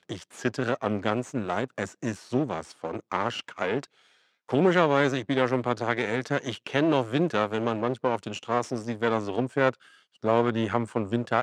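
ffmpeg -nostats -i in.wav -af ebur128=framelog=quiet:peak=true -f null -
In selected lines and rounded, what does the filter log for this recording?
Integrated loudness:
  I:         -27.4 LUFS
  Threshold: -37.6 LUFS
Loudness range:
  LRA:         5.1 LU
  Threshold: -47.4 LUFS
  LRA low:   -30.6 LUFS
  LRA high:  -25.5 LUFS
True peak:
  Peak:       -6.6 dBFS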